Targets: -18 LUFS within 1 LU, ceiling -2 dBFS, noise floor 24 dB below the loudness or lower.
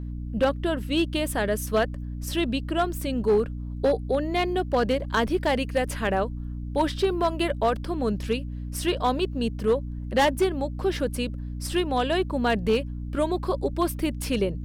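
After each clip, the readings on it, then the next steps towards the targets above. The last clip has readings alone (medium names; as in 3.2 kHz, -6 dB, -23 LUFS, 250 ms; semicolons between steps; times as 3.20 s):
clipped samples 0.7%; clipping level -15.0 dBFS; hum 60 Hz; highest harmonic 300 Hz; hum level -31 dBFS; loudness -26.0 LUFS; peak level -15.0 dBFS; loudness target -18.0 LUFS
-> clip repair -15 dBFS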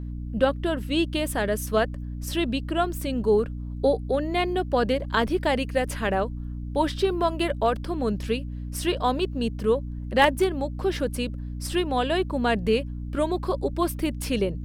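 clipped samples 0.0%; hum 60 Hz; highest harmonic 300 Hz; hum level -31 dBFS
-> hum notches 60/120/180/240/300 Hz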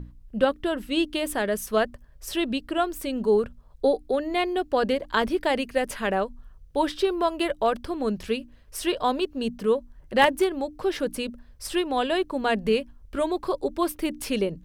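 hum not found; loudness -26.0 LUFS; peak level -5.5 dBFS; loudness target -18.0 LUFS
-> trim +8 dB; peak limiter -2 dBFS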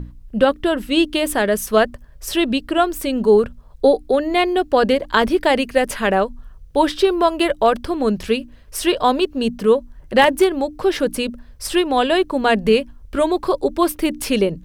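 loudness -18.5 LUFS; peak level -2.0 dBFS; noise floor -43 dBFS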